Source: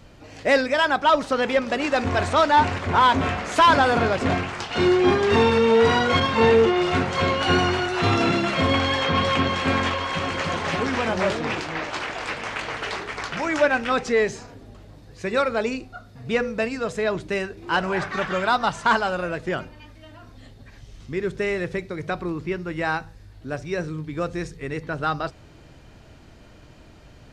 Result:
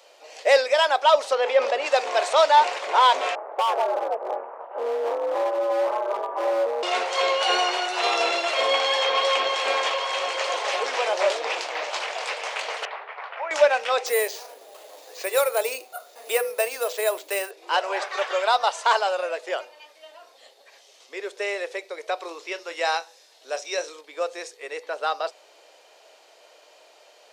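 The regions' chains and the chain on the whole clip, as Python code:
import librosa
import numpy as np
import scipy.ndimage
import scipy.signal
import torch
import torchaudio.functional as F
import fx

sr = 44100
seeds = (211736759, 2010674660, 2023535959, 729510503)

y = fx.chain(x, sr, fx.lowpass(hz=2200.0, slope=6),
    fx.sustainer(db_per_s=45.0), at=(1.35, 1.86))
y = fx.chain(y, sr, fx.lowpass(hz=1100.0, slope=24),
    fx.ring_mod(carrier_hz=110.0),
    fx.clip_hard(threshold_db=-18.5), at=(3.35, 6.83))
y = fx.chain(y, sr, fx.bandpass_edges(low_hz=700.0, high_hz=2000.0),
    fx.air_absorb(metres=230.0), at=(12.85, 13.51))
y = fx.chain(y, sr, fx.resample_bad(factor=4, down='none', up='hold'),
    fx.band_squash(depth_pct=40), at=(14.06, 17.51))
y = fx.chain(y, sr, fx.peak_eq(hz=5300.0, db=9.0, octaves=1.5),
    fx.notch(hz=4600.0, q=10.0),
    fx.doubler(ms=30.0, db=-13.5), at=(22.2, 24.01))
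y = scipy.signal.sosfilt(scipy.signal.butter(6, 490.0, 'highpass', fs=sr, output='sos'), y)
y = fx.peak_eq(y, sr, hz=1500.0, db=-8.5, octaves=1.2)
y = y * 10.0 ** (4.5 / 20.0)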